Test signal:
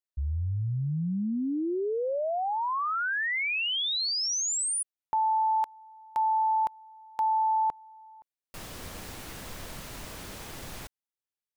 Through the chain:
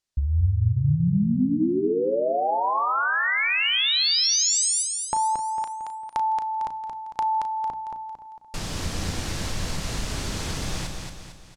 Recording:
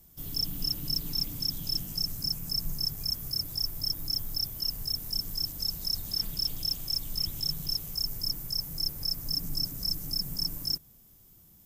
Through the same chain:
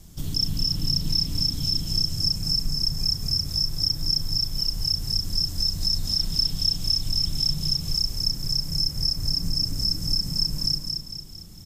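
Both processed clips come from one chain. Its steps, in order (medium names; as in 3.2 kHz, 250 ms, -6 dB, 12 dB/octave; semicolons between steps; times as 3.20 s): low-pass 5.9 kHz 12 dB/octave; tone controls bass +8 dB, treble +9 dB; hum notches 60/120/180/240/300 Hz; compression 2:1, threshold -36 dBFS; doubling 35 ms -10.5 dB; feedback delay 226 ms, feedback 46%, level -5 dB; two-slope reverb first 0.48 s, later 2.3 s, from -26 dB, DRR 18 dB; trim +8.5 dB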